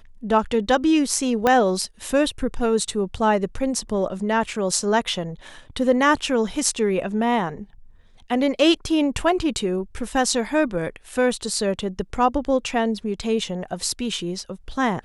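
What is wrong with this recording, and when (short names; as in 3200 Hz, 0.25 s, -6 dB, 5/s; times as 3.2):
1.47 pop -6 dBFS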